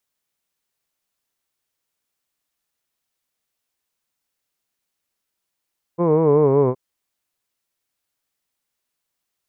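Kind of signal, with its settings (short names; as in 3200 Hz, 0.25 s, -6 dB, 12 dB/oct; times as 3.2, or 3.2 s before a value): formant-synthesis vowel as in hood, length 0.77 s, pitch 168 Hz, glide -4.5 st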